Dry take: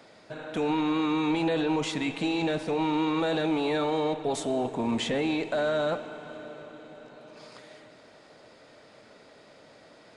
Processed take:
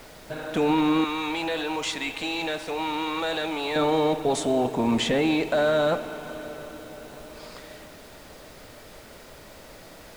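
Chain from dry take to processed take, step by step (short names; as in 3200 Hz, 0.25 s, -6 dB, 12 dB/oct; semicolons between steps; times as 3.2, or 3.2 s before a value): 1.04–3.76 HPF 1000 Hz 6 dB/oct; added noise pink -54 dBFS; gain +5 dB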